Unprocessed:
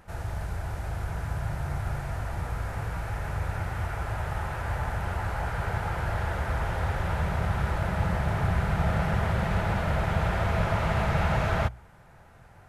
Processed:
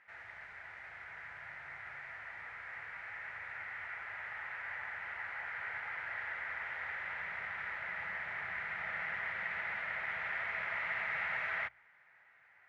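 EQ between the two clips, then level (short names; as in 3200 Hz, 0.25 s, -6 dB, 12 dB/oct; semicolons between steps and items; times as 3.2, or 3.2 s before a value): band-pass 2000 Hz, Q 5.8; air absorption 53 m; +5.0 dB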